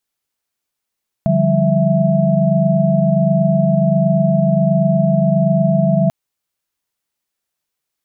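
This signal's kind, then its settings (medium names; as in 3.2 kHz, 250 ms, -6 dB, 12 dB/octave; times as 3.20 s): chord D3/F3/G3/E5 sine, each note -16.5 dBFS 4.84 s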